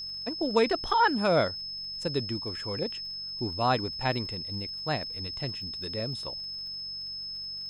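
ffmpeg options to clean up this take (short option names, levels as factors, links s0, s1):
-af "adeclick=t=4,bandreject=f=46.9:t=h:w=4,bandreject=f=93.8:t=h:w=4,bandreject=f=140.7:t=h:w=4,bandreject=f=187.6:t=h:w=4,bandreject=f=5200:w=30"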